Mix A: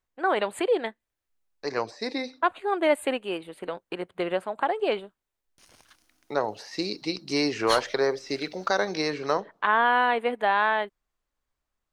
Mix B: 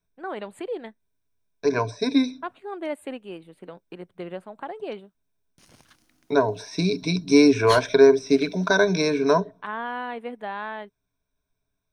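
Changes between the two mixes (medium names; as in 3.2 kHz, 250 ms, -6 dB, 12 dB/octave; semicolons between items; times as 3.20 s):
first voice -11.0 dB; second voice: add rippled EQ curve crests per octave 1.6, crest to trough 17 dB; master: add peaking EQ 160 Hz +11.5 dB 2 oct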